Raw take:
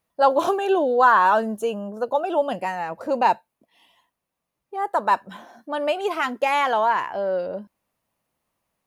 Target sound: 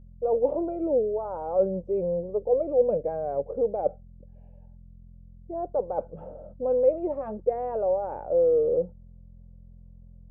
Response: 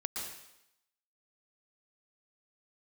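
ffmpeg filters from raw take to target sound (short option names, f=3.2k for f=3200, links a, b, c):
-af "areverse,acompressor=threshold=-26dB:ratio=6,areverse,lowpass=f=620:t=q:w=5,aeval=exprs='val(0)+0.00708*(sin(2*PI*50*n/s)+sin(2*PI*2*50*n/s)/2+sin(2*PI*3*50*n/s)/3+sin(2*PI*4*50*n/s)/4+sin(2*PI*5*50*n/s)/5)':c=same,asetrate=37926,aresample=44100,volume=-4dB"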